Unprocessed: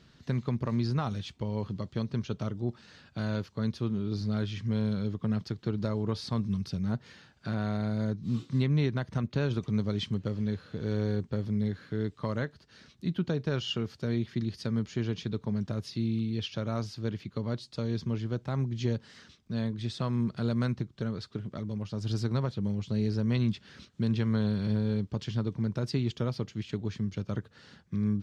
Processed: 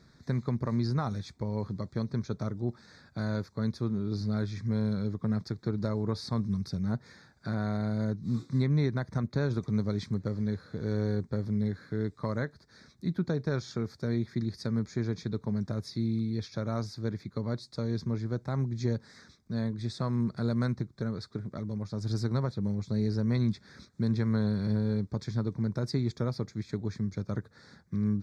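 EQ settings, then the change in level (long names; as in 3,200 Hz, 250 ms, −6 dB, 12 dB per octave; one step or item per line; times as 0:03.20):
Butterworth band-reject 2,900 Hz, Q 1.9
0.0 dB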